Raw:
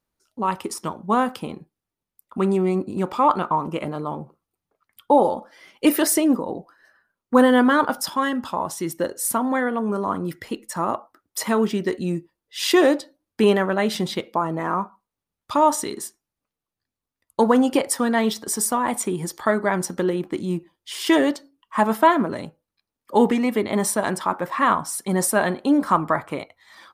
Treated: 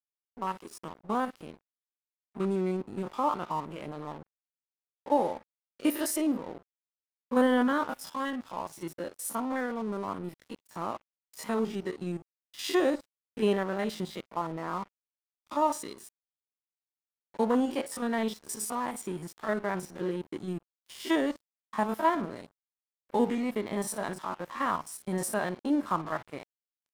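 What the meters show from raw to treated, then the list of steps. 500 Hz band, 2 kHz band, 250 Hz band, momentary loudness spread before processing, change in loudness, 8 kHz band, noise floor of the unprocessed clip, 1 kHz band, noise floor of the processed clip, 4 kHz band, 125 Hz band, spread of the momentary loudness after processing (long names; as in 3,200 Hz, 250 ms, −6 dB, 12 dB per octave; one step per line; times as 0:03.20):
−10.0 dB, −10.5 dB, −9.5 dB, 14 LU, −10.0 dB, −12.5 dB, below −85 dBFS, −10.5 dB, below −85 dBFS, −11.5 dB, −10.0 dB, 16 LU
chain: spectrum averaged block by block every 50 ms
dead-zone distortion −38 dBFS
level −8 dB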